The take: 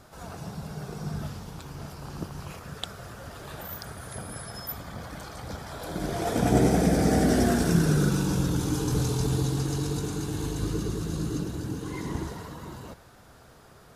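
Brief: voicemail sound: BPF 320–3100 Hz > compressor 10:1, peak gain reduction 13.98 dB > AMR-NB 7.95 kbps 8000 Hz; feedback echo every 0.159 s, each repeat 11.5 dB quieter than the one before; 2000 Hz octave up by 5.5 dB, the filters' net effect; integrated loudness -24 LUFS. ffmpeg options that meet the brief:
-af "highpass=320,lowpass=3.1k,equalizer=f=2k:t=o:g=8,aecho=1:1:159|318|477:0.266|0.0718|0.0194,acompressor=threshold=-33dB:ratio=10,volume=16.5dB" -ar 8000 -c:a libopencore_amrnb -b:a 7950

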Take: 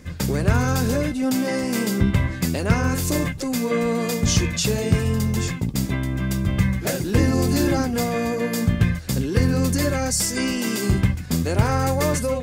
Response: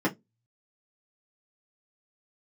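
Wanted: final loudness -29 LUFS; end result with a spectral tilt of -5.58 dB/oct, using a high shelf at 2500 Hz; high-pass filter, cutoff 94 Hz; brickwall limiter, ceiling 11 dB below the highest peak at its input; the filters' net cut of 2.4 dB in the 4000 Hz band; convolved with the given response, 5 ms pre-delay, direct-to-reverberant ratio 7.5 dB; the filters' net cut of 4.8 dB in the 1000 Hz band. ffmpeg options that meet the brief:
-filter_complex "[0:a]highpass=94,equalizer=f=1k:t=o:g=-7,highshelf=f=2.5k:g=3.5,equalizer=f=4k:t=o:g=-6.5,alimiter=limit=-17dB:level=0:latency=1,asplit=2[a][b];[1:a]atrim=start_sample=2205,adelay=5[c];[b][c]afir=irnorm=-1:irlink=0,volume=-18.5dB[d];[a][d]amix=inputs=2:normalize=0,volume=-6dB"

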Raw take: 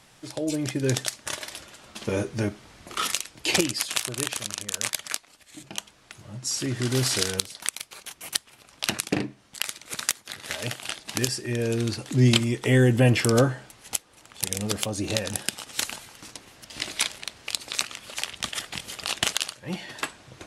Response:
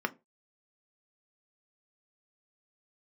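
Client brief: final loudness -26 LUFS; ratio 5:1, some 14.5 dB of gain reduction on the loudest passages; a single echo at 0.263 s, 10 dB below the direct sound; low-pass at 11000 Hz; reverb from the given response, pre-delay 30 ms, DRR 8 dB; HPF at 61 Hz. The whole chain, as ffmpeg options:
-filter_complex "[0:a]highpass=61,lowpass=11k,acompressor=threshold=-31dB:ratio=5,aecho=1:1:263:0.316,asplit=2[a][b];[1:a]atrim=start_sample=2205,adelay=30[c];[b][c]afir=irnorm=-1:irlink=0,volume=-15dB[d];[a][d]amix=inputs=2:normalize=0,volume=9dB"

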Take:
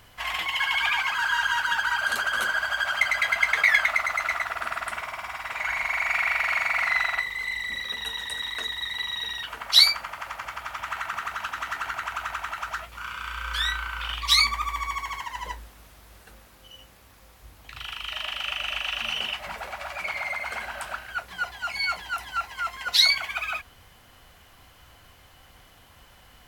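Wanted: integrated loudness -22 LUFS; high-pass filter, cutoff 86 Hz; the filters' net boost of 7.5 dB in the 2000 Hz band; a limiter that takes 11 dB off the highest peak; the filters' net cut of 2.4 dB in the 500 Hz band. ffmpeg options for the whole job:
-af "highpass=86,equalizer=f=500:t=o:g=-4.5,equalizer=f=2k:t=o:g=9,volume=-0.5dB,alimiter=limit=-10dB:level=0:latency=1"

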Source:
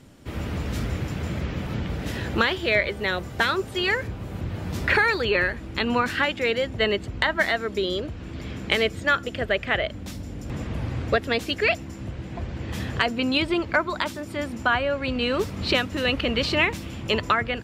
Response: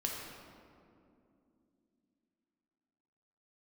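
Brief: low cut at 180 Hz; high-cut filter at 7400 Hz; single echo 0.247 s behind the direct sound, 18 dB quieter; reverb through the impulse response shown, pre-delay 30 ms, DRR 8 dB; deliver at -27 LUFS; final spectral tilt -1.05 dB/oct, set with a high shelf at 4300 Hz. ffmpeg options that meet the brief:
-filter_complex "[0:a]highpass=180,lowpass=7.4k,highshelf=f=4.3k:g=8.5,aecho=1:1:247:0.126,asplit=2[a][b];[1:a]atrim=start_sample=2205,adelay=30[c];[b][c]afir=irnorm=-1:irlink=0,volume=-11dB[d];[a][d]amix=inputs=2:normalize=0,volume=-4dB"

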